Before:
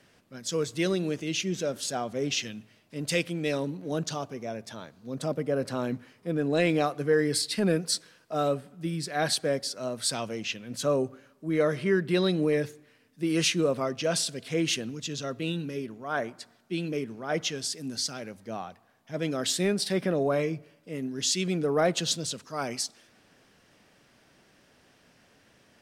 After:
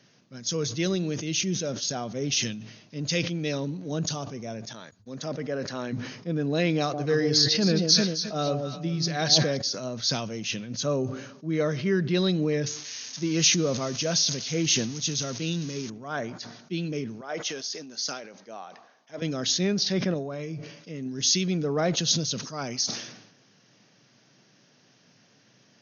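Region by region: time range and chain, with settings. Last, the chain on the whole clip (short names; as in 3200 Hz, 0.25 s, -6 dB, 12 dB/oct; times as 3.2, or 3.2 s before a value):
4.73–5.93 HPF 330 Hz 6 dB/oct + bell 1800 Hz +6 dB 0.48 oct + gate -49 dBFS, range -46 dB
6.8–9.57 dynamic EQ 4700 Hz, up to +5 dB, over -43 dBFS, Q 0.89 + echo with dull and thin repeats by turns 0.133 s, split 850 Hz, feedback 52%, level -5 dB
12.66–15.9 switching spikes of -26 dBFS + high shelf 8500 Hz +3 dB
17.21–19.22 HPF 480 Hz + high shelf 2500 Hz -6.5 dB
20.14–21.06 compressor 3:1, threshold -32 dBFS + mismatched tape noise reduction encoder only
whole clip: FFT band-pass 100–6700 Hz; tone controls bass +7 dB, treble +11 dB; sustainer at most 68 dB/s; gain -2.5 dB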